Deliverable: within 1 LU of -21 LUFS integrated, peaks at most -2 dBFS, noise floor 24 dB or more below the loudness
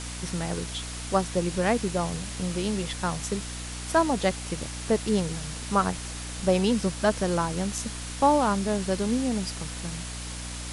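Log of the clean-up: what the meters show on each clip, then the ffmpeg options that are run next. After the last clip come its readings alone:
hum 60 Hz; harmonics up to 300 Hz; hum level -36 dBFS; noise floor -36 dBFS; noise floor target -52 dBFS; loudness -27.5 LUFS; peak -10.0 dBFS; loudness target -21.0 LUFS
-> -af "bandreject=f=60:t=h:w=4,bandreject=f=120:t=h:w=4,bandreject=f=180:t=h:w=4,bandreject=f=240:t=h:w=4,bandreject=f=300:t=h:w=4"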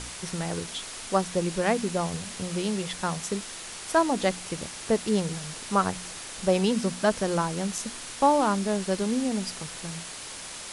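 hum none; noise floor -40 dBFS; noise floor target -52 dBFS
-> -af "afftdn=nr=12:nf=-40"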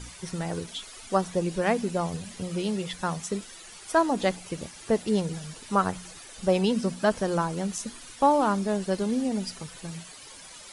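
noise floor -46 dBFS; noise floor target -52 dBFS
-> -af "afftdn=nr=6:nf=-46"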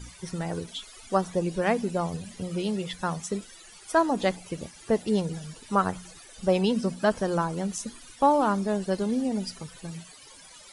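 noise floor -50 dBFS; noise floor target -52 dBFS
-> -af "afftdn=nr=6:nf=-50"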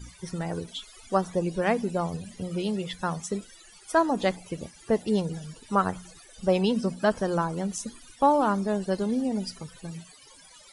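noise floor -53 dBFS; loudness -28.0 LUFS; peak -10.5 dBFS; loudness target -21.0 LUFS
-> -af "volume=7dB"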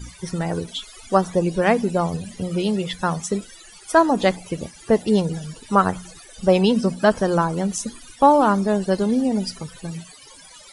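loudness -21.0 LUFS; peak -3.5 dBFS; noise floor -46 dBFS

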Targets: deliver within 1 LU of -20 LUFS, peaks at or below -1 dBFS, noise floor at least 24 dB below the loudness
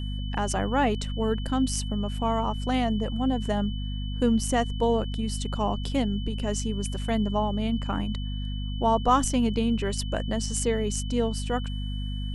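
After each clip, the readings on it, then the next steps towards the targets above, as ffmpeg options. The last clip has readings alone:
hum 50 Hz; harmonics up to 250 Hz; hum level -28 dBFS; steady tone 3000 Hz; tone level -42 dBFS; loudness -27.5 LUFS; peak -9.0 dBFS; loudness target -20.0 LUFS
-> -af "bandreject=f=50:t=h:w=4,bandreject=f=100:t=h:w=4,bandreject=f=150:t=h:w=4,bandreject=f=200:t=h:w=4,bandreject=f=250:t=h:w=4"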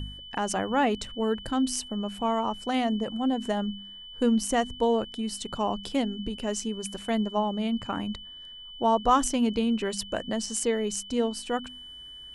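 hum none; steady tone 3000 Hz; tone level -42 dBFS
-> -af "bandreject=f=3k:w=30"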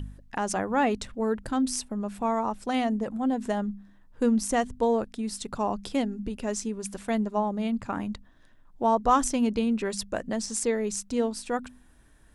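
steady tone none; loudness -28.5 LUFS; peak -10.0 dBFS; loudness target -20.0 LUFS
-> -af "volume=8.5dB"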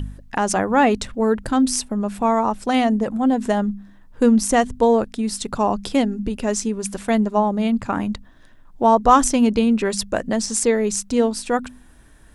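loudness -20.0 LUFS; peak -1.5 dBFS; noise floor -48 dBFS

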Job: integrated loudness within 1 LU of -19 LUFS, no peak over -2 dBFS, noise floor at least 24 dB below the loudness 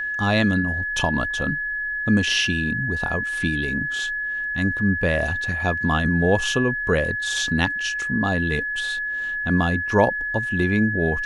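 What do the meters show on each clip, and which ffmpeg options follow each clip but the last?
steady tone 1700 Hz; tone level -24 dBFS; loudness -22.0 LUFS; peak -3.5 dBFS; loudness target -19.0 LUFS
-> -af "bandreject=f=1.7k:w=30"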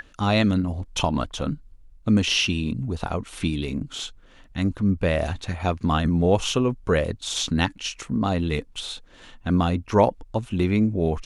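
steady tone none; loudness -24.0 LUFS; peak -4.5 dBFS; loudness target -19.0 LUFS
-> -af "volume=5dB,alimiter=limit=-2dB:level=0:latency=1"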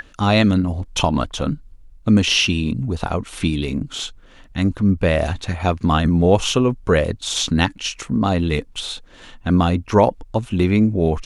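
loudness -19.0 LUFS; peak -2.0 dBFS; noise floor -47 dBFS

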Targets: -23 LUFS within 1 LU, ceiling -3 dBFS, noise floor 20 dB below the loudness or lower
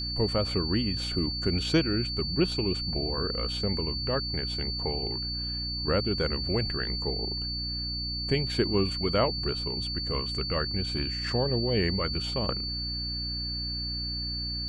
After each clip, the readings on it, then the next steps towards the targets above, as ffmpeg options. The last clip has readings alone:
hum 60 Hz; harmonics up to 300 Hz; hum level -34 dBFS; steady tone 4500 Hz; tone level -32 dBFS; loudness -28.5 LUFS; peak -11.0 dBFS; loudness target -23.0 LUFS
-> -af "bandreject=f=60:t=h:w=4,bandreject=f=120:t=h:w=4,bandreject=f=180:t=h:w=4,bandreject=f=240:t=h:w=4,bandreject=f=300:t=h:w=4"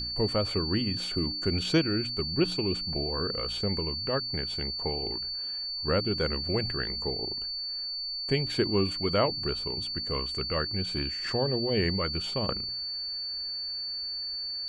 hum none; steady tone 4500 Hz; tone level -32 dBFS
-> -af "bandreject=f=4.5k:w=30"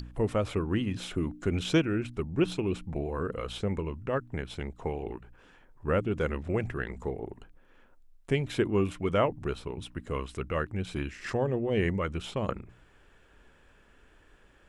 steady tone none; loudness -31.5 LUFS; peak -12.5 dBFS; loudness target -23.0 LUFS
-> -af "volume=8.5dB"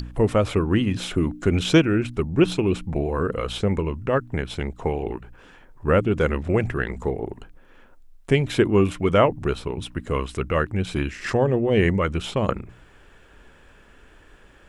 loudness -23.0 LUFS; peak -4.0 dBFS; noise floor -52 dBFS

